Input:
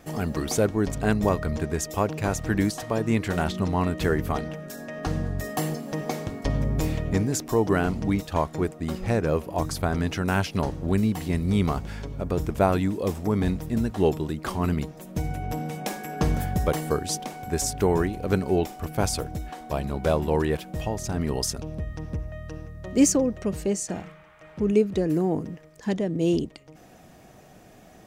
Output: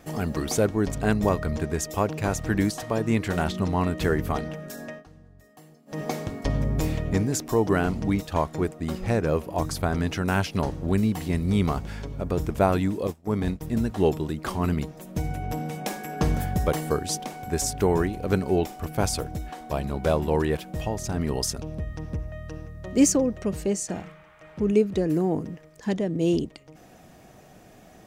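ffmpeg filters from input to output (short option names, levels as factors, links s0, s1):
-filter_complex "[0:a]asettb=1/sr,asplit=3[s0][s1][s2];[s0]atrim=end=13.074[s3];[s1]atrim=start=13.07:end=13.61,asetpts=PTS-STARTPTS,afade=t=in:d=0.004:c=qsin,afade=t=out:st=0.536:d=0.004:c=qsin,agate=range=0.0224:threshold=0.0891:ratio=3:release=100:detection=peak[s4];[s2]atrim=start=13.606[s5];[s3][s4]acrossfade=d=0.004:c1=hsin:c2=qsin[s6];[s6][s5]acrossfade=d=0.004:c1=qsin:c2=hsin,asplit=3[s7][s8][s9];[s7]atrim=end=5.04,asetpts=PTS-STARTPTS,afade=t=out:st=4.89:d=0.15:silence=0.0668344[s10];[s8]atrim=start=5.04:end=5.86,asetpts=PTS-STARTPTS,volume=0.0668[s11];[s9]atrim=start=5.86,asetpts=PTS-STARTPTS,afade=t=in:d=0.15:silence=0.0668344[s12];[s10][s11][s12]concat=n=3:v=0:a=1"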